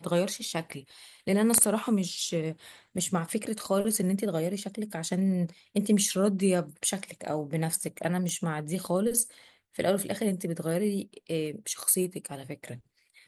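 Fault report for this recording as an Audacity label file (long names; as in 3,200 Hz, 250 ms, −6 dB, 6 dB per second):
8.290000	8.290000	click −21 dBFS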